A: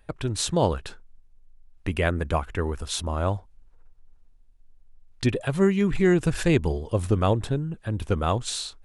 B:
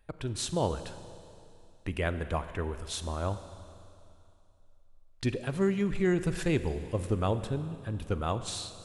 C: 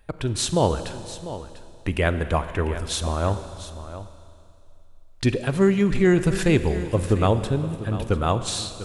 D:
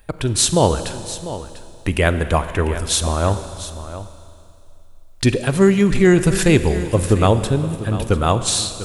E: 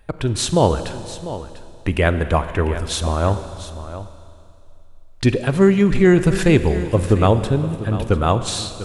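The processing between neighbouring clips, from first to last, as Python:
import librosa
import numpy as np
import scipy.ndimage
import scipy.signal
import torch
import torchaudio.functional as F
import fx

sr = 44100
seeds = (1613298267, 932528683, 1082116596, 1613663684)

y1 = fx.rev_schroeder(x, sr, rt60_s=2.7, comb_ms=33, drr_db=11.0)
y1 = y1 * 10.0 ** (-7.0 / 20.0)
y2 = y1 + 10.0 ** (-13.5 / 20.0) * np.pad(y1, (int(696 * sr / 1000.0), 0))[:len(y1)]
y2 = y2 * 10.0 ** (9.0 / 20.0)
y3 = fx.high_shelf(y2, sr, hz=6900.0, db=10.0)
y3 = y3 * 10.0 ** (5.0 / 20.0)
y4 = fx.lowpass(y3, sr, hz=3100.0, slope=6)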